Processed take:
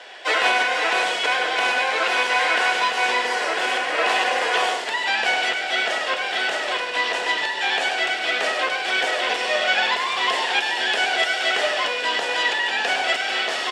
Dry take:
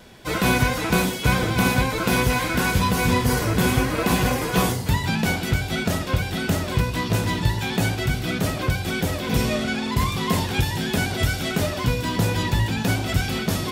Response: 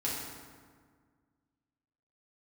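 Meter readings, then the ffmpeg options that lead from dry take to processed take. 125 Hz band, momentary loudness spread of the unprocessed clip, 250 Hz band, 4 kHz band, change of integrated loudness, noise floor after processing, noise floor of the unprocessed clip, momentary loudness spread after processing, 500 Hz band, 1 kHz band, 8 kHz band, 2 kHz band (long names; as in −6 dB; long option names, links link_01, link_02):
below −35 dB, 4 LU, −16.5 dB, +6.5 dB, +2.0 dB, −27 dBFS, −29 dBFS, 4 LU, +0.5 dB, +4.5 dB, −3.5 dB, +7.0 dB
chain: -filter_complex "[0:a]asplit=2[link_01][link_02];[link_02]aecho=0:1:101:0.398[link_03];[link_01][link_03]amix=inputs=2:normalize=0,alimiter=limit=-15dB:level=0:latency=1:release=443,highpass=frequency=470:width=0.5412,highpass=frequency=470:width=1.3066,equalizer=frequency=740:width_type=q:width=4:gain=6,equalizer=frequency=1800:width_type=q:width=4:gain=9,equalizer=frequency=2900:width_type=q:width=4:gain=8,equalizer=frequency=6400:width_type=q:width=4:gain=-4,lowpass=frequency=7500:width=0.5412,lowpass=frequency=7500:width=1.3066,asplit=2[link_04][link_05];[link_05]asplit=5[link_06][link_07][link_08][link_09][link_10];[link_06]adelay=143,afreqshift=-35,volume=-12.5dB[link_11];[link_07]adelay=286,afreqshift=-70,volume=-19.2dB[link_12];[link_08]adelay=429,afreqshift=-105,volume=-26dB[link_13];[link_09]adelay=572,afreqshift=-140,volume=-32.7dB[link_14];[link_10]adelay=715,afreqshift=-175,volume=-39.5dB[link_15];[link_11][link_12][link_13][link_14][link_15]amix=inputs=5:normalize=0[link_16];[link_04][link_16]amix=inputs=2:normalize=0,volume=5.5dB"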